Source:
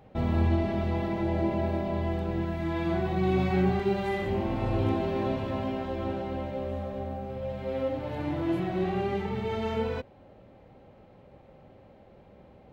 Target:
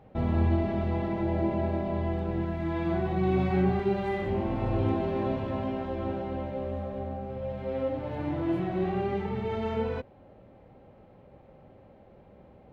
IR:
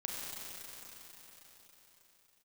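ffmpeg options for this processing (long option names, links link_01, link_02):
-af "highshelf=frequency=3700:gain=-10.5"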